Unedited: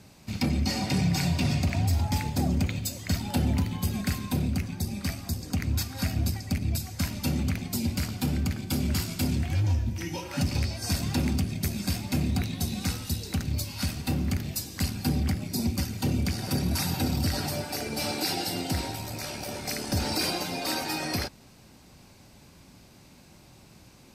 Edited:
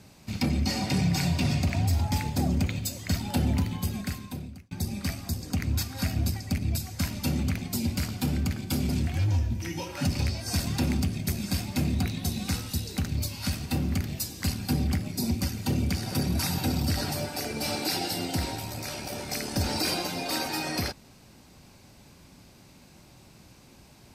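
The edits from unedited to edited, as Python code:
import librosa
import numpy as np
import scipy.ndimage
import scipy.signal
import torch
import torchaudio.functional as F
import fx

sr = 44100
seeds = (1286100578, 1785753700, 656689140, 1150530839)

y = fx.edit(x, sr, fx.fade_out_span(start_s=3.7, length_s=1.01),
    fx.cut(start_s=8.89, length_s=0.36), tone=tone)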